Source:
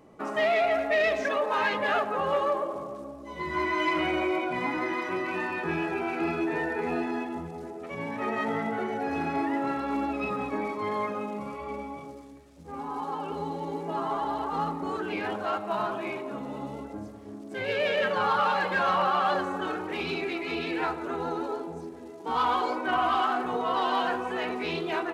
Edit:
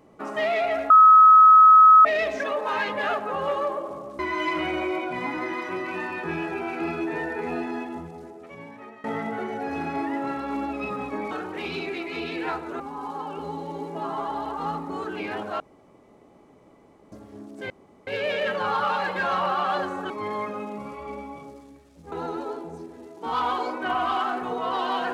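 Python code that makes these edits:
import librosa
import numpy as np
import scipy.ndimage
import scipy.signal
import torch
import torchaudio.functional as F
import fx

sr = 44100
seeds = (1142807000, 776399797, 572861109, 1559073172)

y = fx.edit(x, sr, fx.insert_tone(at_s=0.9, length_s=1.15, hz=1280.0, db=-8.5),
    fx.cut(start_s=3.04, length_s=0.55),
    fx.fade_out_to(start_s=7.36, length_s=1.08, floor_db=-22.0),
    fx.swap(start_s=10.71, length_s=2.02, other_s=19.66, other_length_s=1.49),
    fx.room_tone_fill(start_s=15.53, length_s=1.52),
    fx.insert_room_tone(at_s=17.63, length_s=0.37), tone=tone)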